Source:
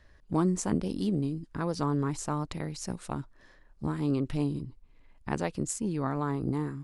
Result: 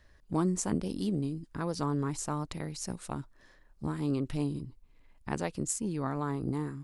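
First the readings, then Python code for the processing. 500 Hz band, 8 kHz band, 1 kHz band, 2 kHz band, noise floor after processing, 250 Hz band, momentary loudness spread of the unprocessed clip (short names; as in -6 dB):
-2.5 dB, +1.5 dB, -2.5 dB, -2.0 dB, -61 dBFS, -2.5 dB, 9 LU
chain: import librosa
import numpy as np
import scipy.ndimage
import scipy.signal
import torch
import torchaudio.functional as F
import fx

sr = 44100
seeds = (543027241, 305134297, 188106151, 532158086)

y = fx.high_shelf(x, sr, hz=6400.0, db=6.5)
y = y * 10.0 ** (-2.5 / 20.0)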